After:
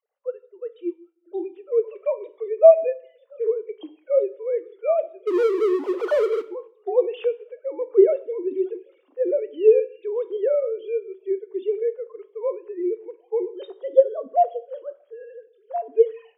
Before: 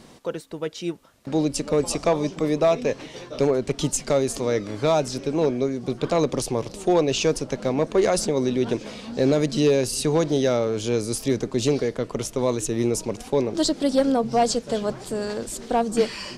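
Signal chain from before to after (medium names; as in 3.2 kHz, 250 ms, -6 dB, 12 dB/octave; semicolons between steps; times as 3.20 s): formants replaced by sine waves; 5.27–6.42 s: power-law waveshaper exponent 0.35; bass shelf 380 Hz -8.5 dB; plate-style reverb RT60 0.79 s, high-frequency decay 0.95×, pre-delay 0 ms, DRR 8.5 dB; spectral contrast expander 1.5:1; trim +5 dB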